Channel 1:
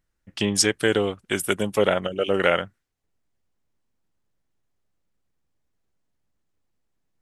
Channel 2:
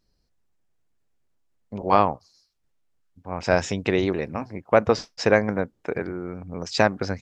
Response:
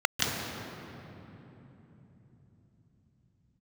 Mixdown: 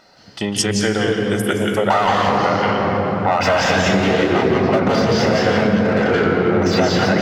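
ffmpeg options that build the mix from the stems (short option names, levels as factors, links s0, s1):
-filter_complex "[0:a]volume=1.12,asplit=2[s0][s1];[s1]volume=0.266[s2];[1:a]deesser=0.85,aeval=exprs='clip(val(0),-1,0.0473)':c=same,asplit=2[s3][s4];[s4]highpass=f=720:p=1,volume=63.1,asoftclip=type=tanh:threshold=0.531[s5];[s3][s5]amix=inputs=2:normalize=0,lowpass=f=3200:p=1,volume=0.501,volume=0.708,asplit=3[s6][s7][s8];[s6]atrim=end=1.17,asetpts=PTS-STARTPTS,afade=t=out:st=1.166:d=0.004:c=hsin[s9];[s7]atrim=start=1.17:end=1.9,asetpts=PTS-STARTPTS,volume=0[s10];[s8]atrim=start=1.9,asetpts=PTS-STARTPTS,afade=t=in:d=0.004:c=hsin[s11];[s9][s10][s11]concat=n=3:v=0:a=1,asplit=2[s12][s13];[s13]volume=0.668[s14];[2:a]atrim=start_sample=2205[s15];[s2][s14]amix=inputs=2:normalize=0[s16];[s16][s15]afir=irnorm=-1:irlink=0[s17];[s0][s12][s17]amix=inputs=3:normalize=0,acompressor=threshold=0.224:ratio=6"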